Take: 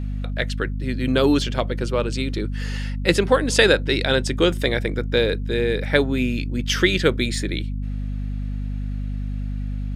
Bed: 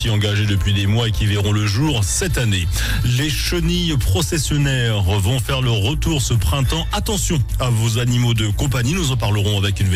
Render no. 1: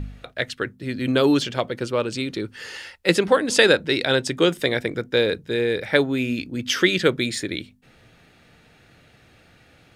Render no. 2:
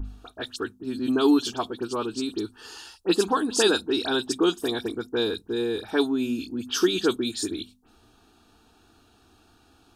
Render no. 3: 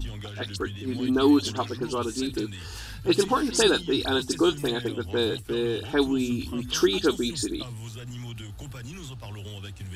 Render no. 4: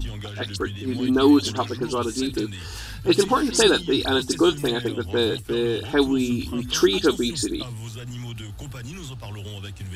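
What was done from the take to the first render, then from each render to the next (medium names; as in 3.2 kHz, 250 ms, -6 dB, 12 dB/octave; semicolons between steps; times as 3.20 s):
de-hum 50 Hz, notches 5
static phaser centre 550 Hz, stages 6; phase dispersion highs, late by 58 ms, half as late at 3 kHz
add bed -21 dB
trim +3.5 dB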